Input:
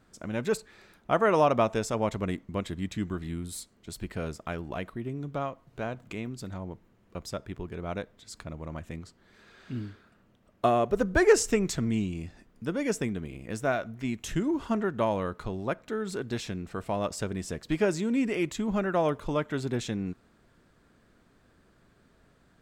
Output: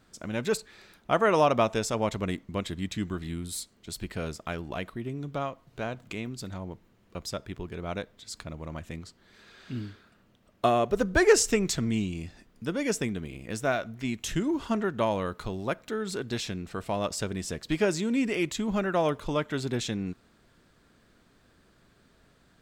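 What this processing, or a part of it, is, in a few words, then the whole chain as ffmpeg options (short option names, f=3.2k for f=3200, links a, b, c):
presence and air boost: -filter_complex "[0:a]asettb=1/sr,asplit=3[a][b][c];[a]atrim=end=15.264[d];[b]atrim=start=15.26:end=15.91,asetpts=PTS-STARTPTS,afade=t=in:d=0.004:c=qsin,afade=t=out:st=0.646:d=0.004:c=qsin,highshelf=f=10k:g=6[e];[c]atrim=start=15.906[f];[d][e]acrossfade=d=0.004:c1=hsin:c2=qsin[g];[g][f]acrossfade=d=0.004:c1=qsin:c2=hsin,equalizer=f=4k:t=o:w=1.6:g=5,highshelf=f=9.5k:g=5"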